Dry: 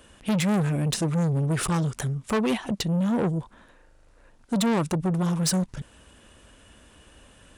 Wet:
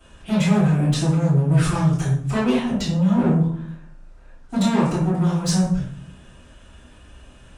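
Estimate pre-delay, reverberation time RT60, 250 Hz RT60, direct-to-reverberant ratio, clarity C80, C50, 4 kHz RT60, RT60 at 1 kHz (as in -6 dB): 3 ms, 0.60 s, 0.90 s, -13.0 dB, 7.5 dB, 3.0 dB, 0.40 s, 0.55 s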